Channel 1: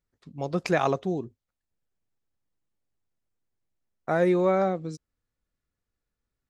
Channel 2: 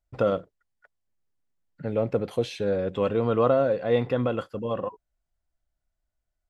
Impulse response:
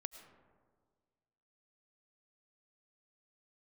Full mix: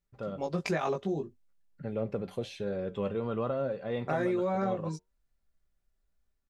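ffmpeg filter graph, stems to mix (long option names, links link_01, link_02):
-filter_complex "[0:a]flanger=delay=17.5:depth=2.6:speed=0.34,volume=0.5dB[link_01];[1:a]lowshelf=frequency=120:gain=7,dynaudnorm=framelen=480:gausssize=3:maxgain=15dB,flanger=delay=7.3:depth=3.8:regen=74:speed=1.1:shape=triangular,volume=-13dB[link_02];[link_01][link_02]amix=inputs=2:normalize=0,aecho=1:1:5.1:0.34,acompressor=threshold=-26dB:ratio=6"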